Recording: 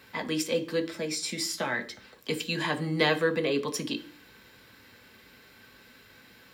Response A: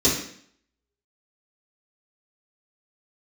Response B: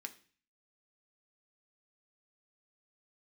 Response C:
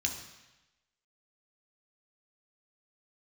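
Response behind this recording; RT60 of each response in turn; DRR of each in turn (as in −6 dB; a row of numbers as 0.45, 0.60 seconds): B; 0.60, 0.40, 1.0 seconds; −11.0, 5.5, 1.5 decibels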